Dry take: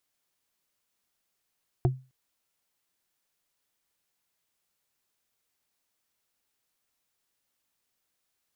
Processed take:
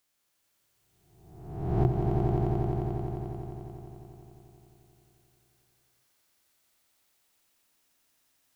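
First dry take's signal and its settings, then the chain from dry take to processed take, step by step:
struck wood, length 0.26 s, lowest mode 130 Hz, modes 3, decay 0.30 s, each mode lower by 3.5 dB, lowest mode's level −17 dB
peak hold with a rise ahead of every peak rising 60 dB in 1.05 s
on a send: echo that builds up and dies away 88 ms, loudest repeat 5, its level −5 dB

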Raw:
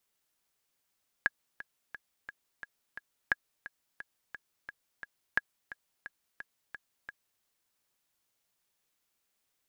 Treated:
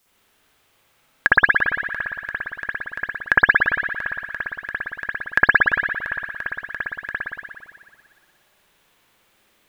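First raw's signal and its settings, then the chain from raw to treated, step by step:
click track 175 BPM, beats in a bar 6, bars 3, 1,660 Hz, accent 16.5 dB −12 dBFS
spring reverb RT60 1.8 s, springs 57 ms, chirp 45 ms, DRR −9.5 dB
boost into a limiter +13.5 dB

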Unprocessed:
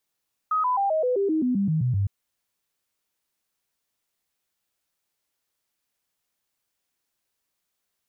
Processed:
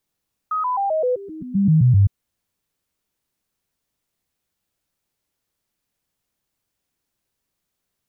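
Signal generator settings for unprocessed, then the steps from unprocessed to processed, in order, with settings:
stepped sweep 1,260 Hz down, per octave 3, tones 12, 0.13 s, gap 0.00 s −20 dBFS
gain on a spectral selection 0:01.15–0:01.66, 210–1,200 Hz −17 dB
low-shelf EQ 360 Hz +11 dB

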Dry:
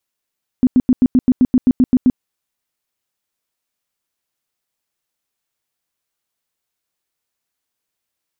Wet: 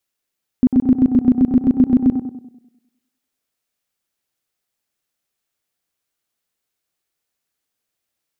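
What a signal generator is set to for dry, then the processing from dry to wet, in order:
tone bursts 253 Hz, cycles 10, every 0.13 s, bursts 12, −7 dBFS
parametric band 980 Hz −4 dB 0.35 octaves
on a send: tape delay 98 ms, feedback 56%, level −4.5 dB, low-pass 1,000 Hz

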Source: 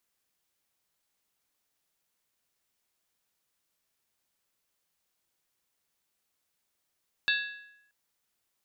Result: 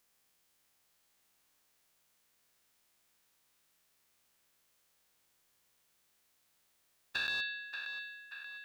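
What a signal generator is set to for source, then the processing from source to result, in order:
struck skin, lowest mode 1,670 Hz, decay 0.84 s, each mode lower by 2.5 dB, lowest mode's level −24 dB
every bin's largest magnitude spread in time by 240 ms
downward compressor 2.5 to 1, threshold −38 dBFS
on a send: feedback echo with a band-pass in the loop 582 ms, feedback 60%, band-pass 1,800 Hz, level −6 dB

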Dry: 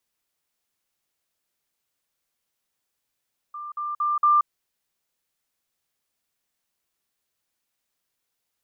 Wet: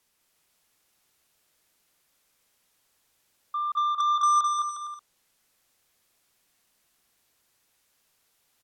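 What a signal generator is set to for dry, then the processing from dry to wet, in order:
level staircase 1,190 Hz −32.5 dBFS, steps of 6 dB, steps 4, 0.18 s 0.05 s
treble cut that deepens with the level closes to 940 Hz, closed at −26 dBFS
in parallel at −11.5 dB: sine wavefolder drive 12 dB, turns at −19.5 dBFS
on the sum: bouncing-ball delay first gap 210 ms, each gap 0.7×, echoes 5

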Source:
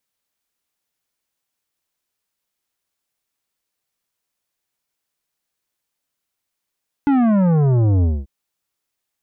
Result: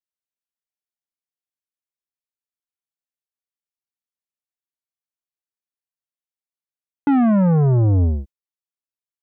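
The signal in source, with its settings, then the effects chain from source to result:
bass drop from 290 Hz, over 1.19 s, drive 11.5 dB, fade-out 0.23 s, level −13.5 dB
noise gate with hold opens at −21 dBFS

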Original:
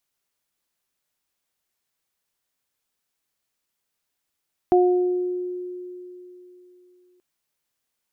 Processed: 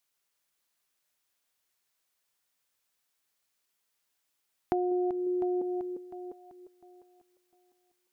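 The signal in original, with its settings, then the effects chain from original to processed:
harmonic partials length 2.48 s, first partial 360 Hz, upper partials −4 dB, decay 3.33 s, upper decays 0.89 s, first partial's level −13 dB
feedback delay that plays each chunk backwards 351 ms, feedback 51%, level −7 dB
low-shelf EQ 460 Hz −6.5 dB
downward compressor 5 to 1, threshold −27 dBFS

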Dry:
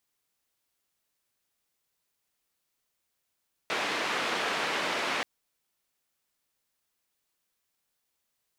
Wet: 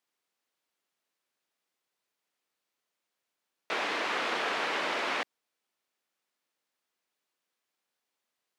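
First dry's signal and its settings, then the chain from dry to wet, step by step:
band-limited noise 290–2,400 Hz, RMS −30.5 dBFS 1.53 s
high-pass filter 230 Hz 12 dB per octave
high-shelf EQ 6,400 Hz −11.5 dB

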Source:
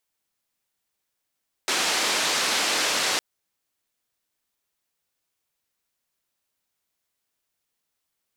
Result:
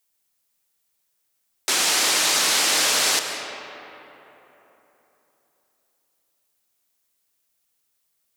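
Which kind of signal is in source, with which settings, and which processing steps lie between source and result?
band-limited noise 290–5,700 Hz, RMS −24 dBFS 1.51 s
high-shelf EQ 5,400 Hz +9.5 dB
comb and all-pass reverb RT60 3.6 s, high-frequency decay 0.5×, pre-delay 95 ms, DRR 6 dB

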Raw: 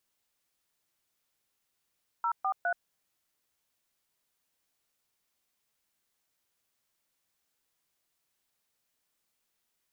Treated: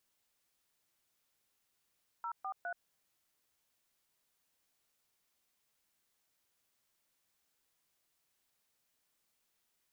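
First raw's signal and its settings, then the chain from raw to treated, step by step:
touch tones "043", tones 78 ms, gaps 127 ms, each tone −29 dBFS
brickwall limiter −33.5 dBFS

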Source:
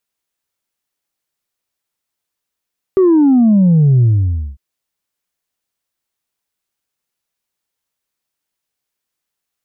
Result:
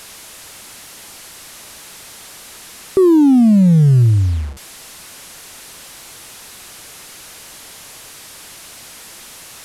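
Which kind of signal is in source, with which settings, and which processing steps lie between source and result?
bass drop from 390 Hz, over 1.60 s, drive 1 dB, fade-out 0.55 s, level −7 dB
linear delta modulator 64 kbit/s, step −30 dBFS

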